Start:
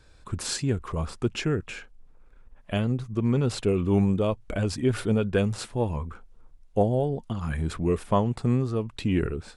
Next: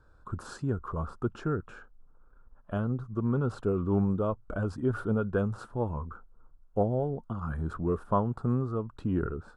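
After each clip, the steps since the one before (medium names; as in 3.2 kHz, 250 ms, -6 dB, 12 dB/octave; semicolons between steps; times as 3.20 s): FFT filter 780 Hz 0 dB, 1.4 kHz +7 dB, 2.1 kHz -20 dB, 3 kHz -15 dB; trim -4.5 dB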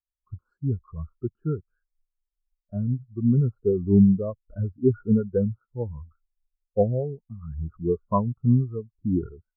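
spectral contrast expander 2.5:1; trim +8 dB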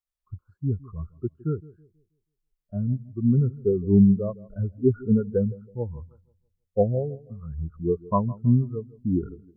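bucket-brigade echo 161 ms, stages 1024, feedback 33%, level -20 dB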